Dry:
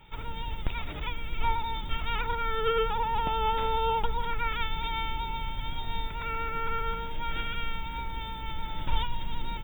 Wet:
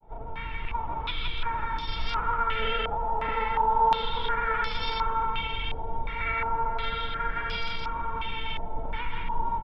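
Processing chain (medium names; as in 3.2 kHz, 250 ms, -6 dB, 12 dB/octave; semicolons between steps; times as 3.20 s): hum notches 50/100/150/200 Hz; peak limiter -22 dBFS, peak gain reduction 7 dB; harmony voices -12 st -15 dB, +3 st -16 dB, +7 st -14 dB; granulator 100 ms, grains 24 per s, spray 26 ms, pitch spread up and down by 0 st; hard clipper -24 dBFS, distortion -27 dB; two-band feedback delay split 830 Hz, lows 627 ms, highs 166 ms, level -3 dB; step-sequenced low-pass 2.8 Hz 700–5000 Hz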